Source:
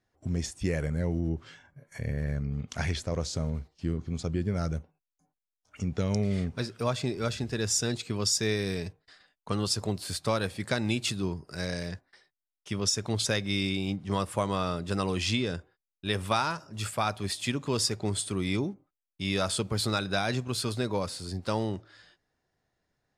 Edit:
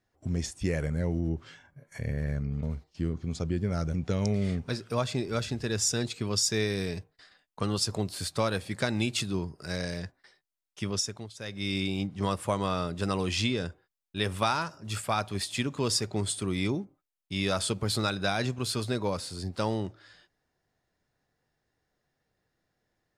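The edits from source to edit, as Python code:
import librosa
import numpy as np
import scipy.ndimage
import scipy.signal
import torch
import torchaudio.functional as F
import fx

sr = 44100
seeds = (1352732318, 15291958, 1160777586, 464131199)

y = fx.edit(x, sr, fx.cut(start_s=2.63, length_s=0.84),
    fx.cut(start_s=4.78, length_s=1.05),
    fx.fade_down_up(start_s=12.75, length_s=0.95, db=-22.0, fade_s=0.47), tone=tone)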